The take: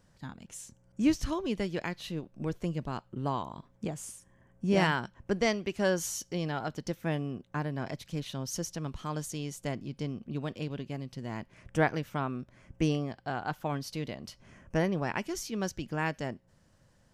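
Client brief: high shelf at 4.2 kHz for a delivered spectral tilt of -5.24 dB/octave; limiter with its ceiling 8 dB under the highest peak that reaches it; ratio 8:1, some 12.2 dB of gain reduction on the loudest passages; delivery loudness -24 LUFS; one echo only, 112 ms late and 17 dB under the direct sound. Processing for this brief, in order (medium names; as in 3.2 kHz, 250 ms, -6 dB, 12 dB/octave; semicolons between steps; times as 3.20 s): treble shelf 4.2 kHz -5 dB; compression 8:1, threshold -33 dBFS; peak limiter -29 dBFS; delay 112 ms -17 dB; trim +18 dB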